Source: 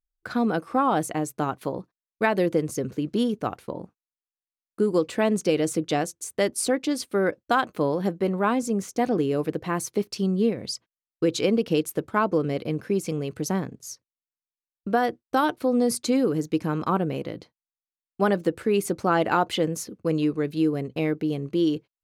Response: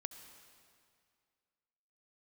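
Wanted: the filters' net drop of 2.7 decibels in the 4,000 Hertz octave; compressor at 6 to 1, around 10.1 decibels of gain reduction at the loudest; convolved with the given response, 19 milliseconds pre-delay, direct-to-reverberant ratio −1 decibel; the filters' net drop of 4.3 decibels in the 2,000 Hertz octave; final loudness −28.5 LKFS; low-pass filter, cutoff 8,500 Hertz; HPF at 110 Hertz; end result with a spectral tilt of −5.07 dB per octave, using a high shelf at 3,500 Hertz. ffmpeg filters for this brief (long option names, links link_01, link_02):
-filter_complex "[0:a]highpass=110,lowpass=8500,equalizer=frequency=2000:width_type=o:gain=-6.5,highshelf=frequency=3500:gain=4,equalizer=frequency=4000:width_type=o:gain=-4,acompressor=threshold=-29dB:ratio=6,asplit=2[link_01][link_02];[1:a]atrim=start_sample=2205,adelay=19[link_03];[link_02][link_03]afir=irnorm=-1:irlink=0,volume=4dB[link_04];[link_01][link_04]amix=inputs=2:normalize=0,volume=2.5dB"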